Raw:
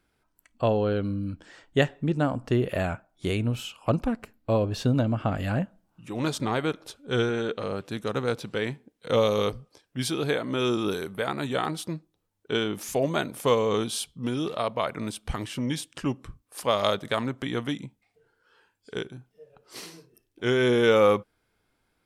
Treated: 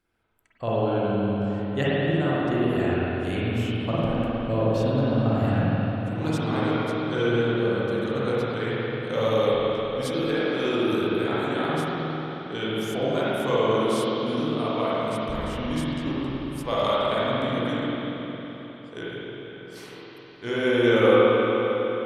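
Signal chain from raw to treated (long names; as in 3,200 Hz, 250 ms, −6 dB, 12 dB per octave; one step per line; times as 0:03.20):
0:11.80–0:12.57: transient designer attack −4 dB, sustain +8 dB
spring reverb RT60 4 s, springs 45/51 ms, chirp 65 ms, DRR −9.5 dB
level −7 dB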